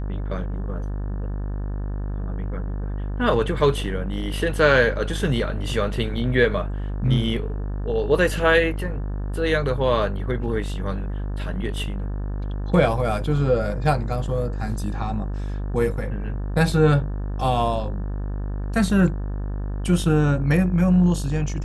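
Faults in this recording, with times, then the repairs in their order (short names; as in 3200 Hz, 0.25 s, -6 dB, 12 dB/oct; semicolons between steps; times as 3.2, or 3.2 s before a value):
buzz 50 Hz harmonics 36 -27 dBFS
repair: de-hum 50 Hz, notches 36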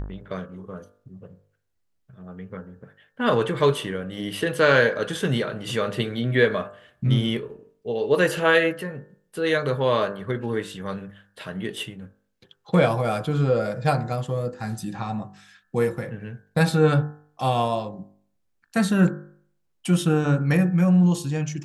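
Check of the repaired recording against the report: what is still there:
none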